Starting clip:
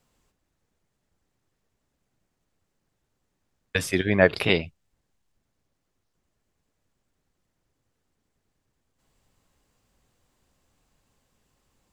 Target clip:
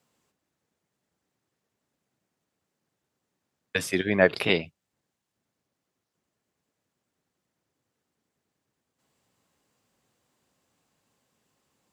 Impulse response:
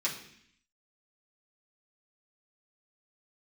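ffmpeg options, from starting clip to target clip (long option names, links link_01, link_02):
-af "highpass=140,volume=-1.5dB"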